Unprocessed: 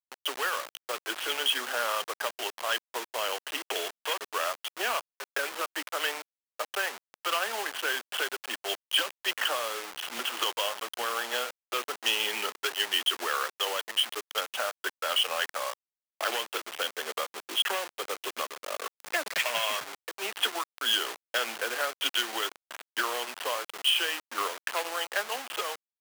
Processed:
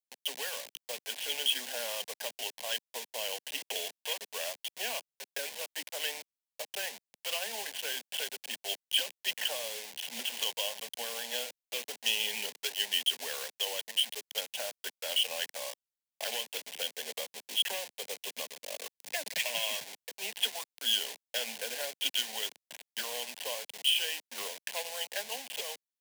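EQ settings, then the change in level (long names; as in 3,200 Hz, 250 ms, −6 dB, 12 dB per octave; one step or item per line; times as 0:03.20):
parametric band 660 Hz −6 dB 1.7 octaves
phaser with its sweep stopped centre 340 Hz, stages 6
0.0 dB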